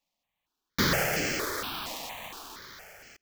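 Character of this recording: aliases and images of a low sample rate 9.5 kHz, jitter 0%; notches that jump at a steady rate 4.3 Hz 400–3700 Hz

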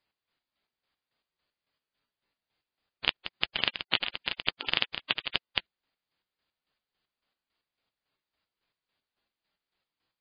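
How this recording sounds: chopped level 3.6 Hz, depth 65%, duty 40%; MP3

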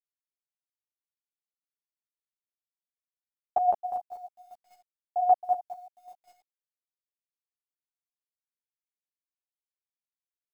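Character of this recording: a quantiser's noise floor 12-bit, dither none; chopped level 5.1 Hz, depth 65%, duty 20%; a shimmering, thickened sound

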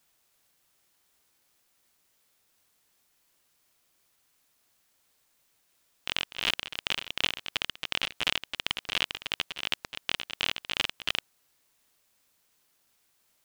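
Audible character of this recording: tremolo triangle 2.8 Hz, depth 95%; a quantiser's noise floor 12-bit, dither triangular

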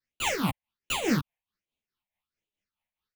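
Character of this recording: aliases and images of a low sample rate 8.4 kHz, jitter 0%; phasing stages 6, 1.3 Hz, lowest notch 340–1500 Hz; tremolo triangle 4.7 Hz, depth 70%; a shimmering, thickened sound

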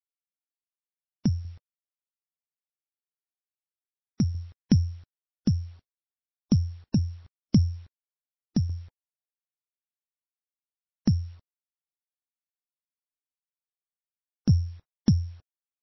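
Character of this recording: a buzz of ramps at a fixed pitch in blocks of 8 samples; tremolo saw down 0.69 Hz, depth 55%; a quantiser's noise floor 10-bit, dither none; MP3

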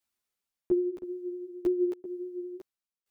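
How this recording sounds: tremolo saw down 0.98 Hz, depth 95%; a shimmering, thickened sound

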